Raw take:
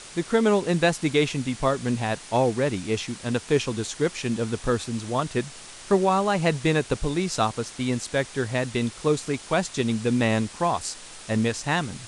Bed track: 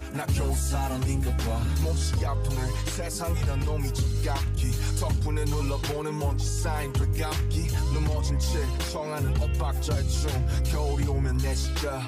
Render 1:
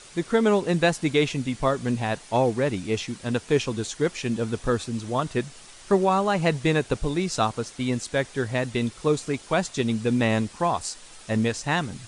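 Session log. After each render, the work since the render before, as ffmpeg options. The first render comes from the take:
-af "afftdn=nr=6:nf=-43"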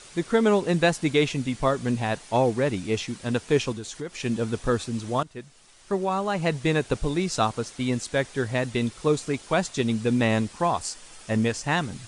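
-filter_complex "[0:a]asettb=1/sr,asplit=3[a][b][c];[a]atrim=end=3.724[d];[b]atrim=start=3.72:end=4.2,asetpts=PTS-STARTPTS,afade=t=in:d=0.004:c=qsin,afade=t=out:st=0.476:d=0.004:c=qsin,acompressor=threshold=-34dB:ratio=2.5:attack=3.2:release=140:knee=1:detection=peak[e];[c]atrim=start=4.196[f];[d][e]acrossfade=d=0.004:c1=hsin:c2=qsin[g];[g][f]acrossfade=d=0.004:c1=qsin:c2=hsin,asettb=1/sr,asplit=3[h][i][j];[h]atrim=end=10.824[k];[i]atrim=start=10.82:end=11.73,asetpts=PTS-STARTPTS,afade=t=in:d=0.004:c=qsin,afade=t=out:st=0.906:d=0.004:c=qsin,bandreject=f=3.9k:w=12[l];[j]atrim=start=11.726[m];[k][l]acrossfade=d=0.004:c1=hsin:c2=qsin[n];[n][m]acrossfade=d=0.004:c1=qsin:c2=hsin,asplit=2[o][p];[o]atrim=end=5.23,asetpts=PTS-STARTPTS,afade=t=out:st=5.226:d=0.004:c=hsin:silence=0.158489[q];[p]atrim=start=5.23,asetpts=PTS-STARTPTS,afade=t=in:d=1.74:silence=0.158489[r];[q][r]concat=n=2:v=0:a=1"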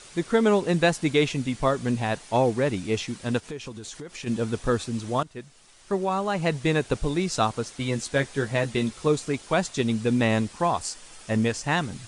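-filter_complex "[0:a]asplit=3[a][b][c];[a]afade=t=out:st=3.39:d=0.02[d];[b]acompressor=threshold=-34dB:ratio=4:attack=3.2:release=140:knee=1:detection=peak,afade=t=in:st=3.39:d=0.02,afade=t=out:st=4.26:d=0.02[e];[c]afade=t=in:st=4.26:d=0.02[f];[d][e][f]amix=inputs=3:normalize=0,asettb=1/sr,asplit=3[g][h][i];[g]atrim=end=7.794[j];[h]atrim=start=7.79:end=9.07,asetpts=PTS-STARTPTS,afade=t=in:d=0.004:c=qsin,afade=t=out:st=1.276:d=0.004:c=qsin,asplit=2[k][l];[l]adelay=14,volume=-6dB[m];[k][m]amix=inputs=2:normalize=0,atrim=end_sample=56448[n];[i]atrim=start=9.066[o];[j][n]acrossfade=d=0.004:c1=hsin:c2=qsin[p];[p][o]acrossfade=d=0.004:c1=qsin:c2=hsin"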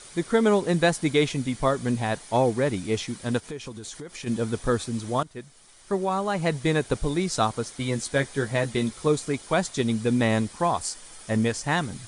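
-af "equalizer=f=9.5k:t=o:w=0.24:g=6.5,bandreject=f=2.7k:w=11"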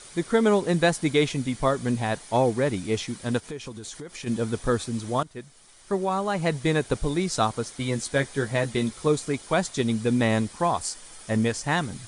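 -af anull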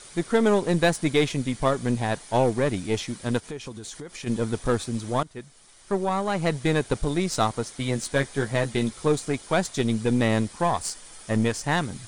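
-af "aeval=exprs='0.422*(cos(1*acos(clip(val(0)/0.422,-1,1)))-cos(1*PI/2))+0.0188*(cos(8*acos(clip(val(0)/0.422,-1,1)))-cos(8*PI/2))':c=same"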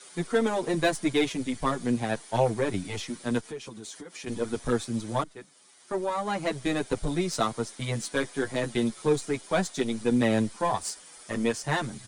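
-filter_complex "[0:a]acrossover=split=160|680|3000[a][b][c][d];[a]aeval=exprs='sgn(val(0))*max(abs(val(0))-0.00562,0)':c=same[e];[e][b][c][d]amix=inputs=4:normalize=0,asplit=2[f][g];[g]adelay=7.6,afreqshift=-0.73[h];[f][h]amix=inputs=2:normalize=1"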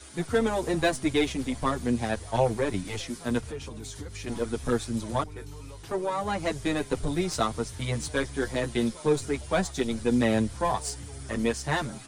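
-filter_complex "[1:a]volume=-16dB[a];[0:a][a]amix=inputs=2:normalize=0"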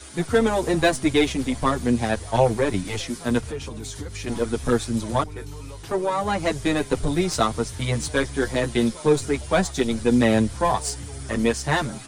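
-af "volume=5.5dB"

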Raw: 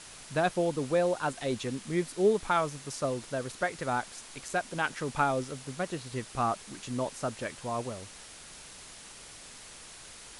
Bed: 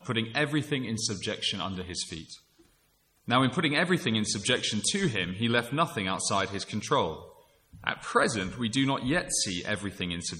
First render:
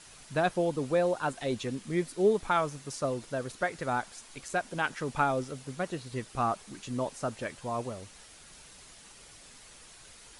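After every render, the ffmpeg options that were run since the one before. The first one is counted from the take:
-af "afftdn=nr=6:nf=-49"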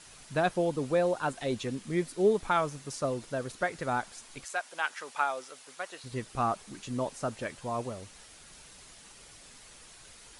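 -filter_complex "[0:a]asettb=1/sr,asplit=3[a][b][c];[a]atrim=end=4.454[d];[b]atrim=start=4.45:end=6.04,asetpts=PTS-STARTPTS,afade=t=in:d=0.004:c=qsin,afade=t=out:st=1.586:d=0.004:c=qsin,highpass=770[e];[c]atrim=start=6.036[f];[d][e]acrossfade=d=0.004:c1=hsin:c2=qsin[g];[g][f]acrossfade=d=0.004:c1=qsin:c2=hsin"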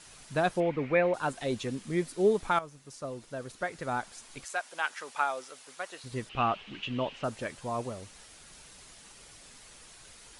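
-filter_complex "[0:a]asettb=1/sr,asplit=3[a][b][c];[a]atrim=end=0.604[d];[b]atrim=start=0.6:end=1.14,asetpts=PTS-STARTPTS,afade=t=in:d=0.004:c=qsin,afade=t=out:st=0.536:d=0.004:c=qsin,lowpass=f=2.2k:t=q:w=6.9[e];[c]atrim=start=1.136[f];[d][e]acrossfade=d=0.004:c1=hsin:c2=qsin[g];[g][f]acrossfade=d=0.004:c1=qsin:c2=hsin,asettb=1/sr,asplit=3[h][i][j];[h]atrim=end=6.294[k];[i]atrim=start=6.29:end=7.24,asetpts=PTS-STARTPTS,afade=t=in:d=0.004:c=qsin,afade=t=out:st=0.946:d=0.004:c=qsin,lowpass=f=2.9k:t=q:w=5.9[l];[j]atrim=start=7.236[m];[k][l]acrossfade=d=0.004:c1=hsin:c2=qsin[n];[n][m]acrossfade=d=0.004:c1=qsin:c2=hsin,asplit=2[o][p];[o]atrim=end=2.59,asetpts=PTS-STARTPTS,afade=t=out:st=2.586:d=0.004:c=hsin:silence=0.223872[q];[p]atrim=start=2.59,asetpts=PTS-STARTPTS,afade=t=in:d=1.77:silence=0.223872[r];[q][r]concat=n=2:v=0:a=1"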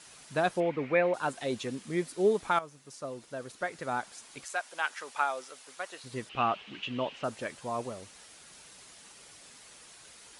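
-af "highpass=f=180:p=1"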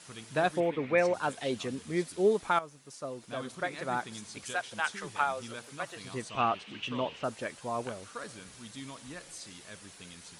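-filter_complex "[1:a]volume=-18dB[a];[0:a][a]amix=inputs=2:normalize=0"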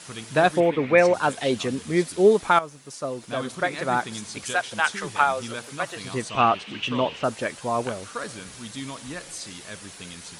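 -af "volume=9dB"

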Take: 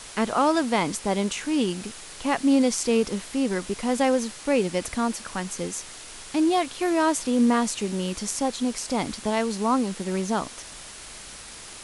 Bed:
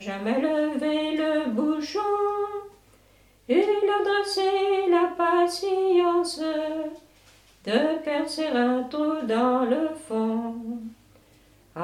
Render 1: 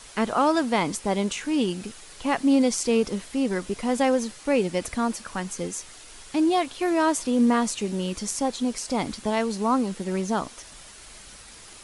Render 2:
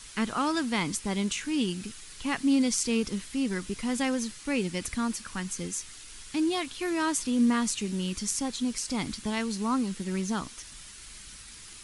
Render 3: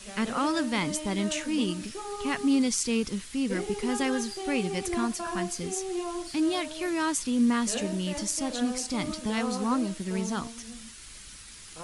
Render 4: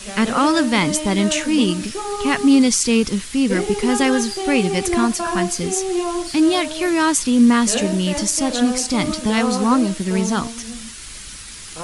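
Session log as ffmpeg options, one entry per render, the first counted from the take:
-af "afftdn=nr=6:nf=-42"
-af "equalizer=f=620:w=0.92:g=-13.5"
-filter_complex "[1:a]volume=-12.5dB[a];[0:a][a]amix=inputs=2:normalize=0"
-af "volume=11dB,alimiter=limit=-2dB:level=0:latency=1"

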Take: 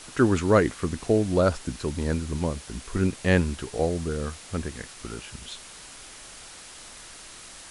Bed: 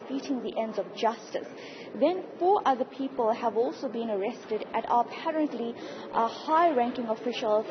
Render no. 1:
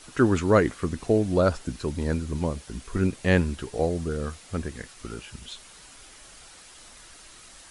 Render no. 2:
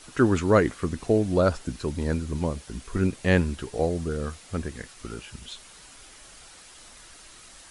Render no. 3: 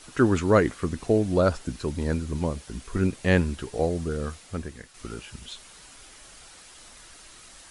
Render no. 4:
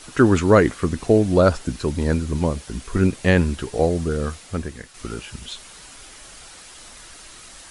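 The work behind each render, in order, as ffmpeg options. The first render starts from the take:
-af "afftdn=nr=6:nf=-45"
-af anull
-filter_complex "[0:a]asplit=2[a][b];[a]atrim=end=4.94,asetpts=PTS-STARTPTS,afade=t=out:st=4.31:d=0.63:silence=0.421697[c];[b]atrim=start=4.94,asetpts=PTS-STARTPTS,afade=t=in:d=0.004:c=hsin:silence=0.421697[d];[c][d]concat=n=2:v=0:a=1"
-af "volume=6dB,alimiter=limit=-3dB:level=0:latency=1"

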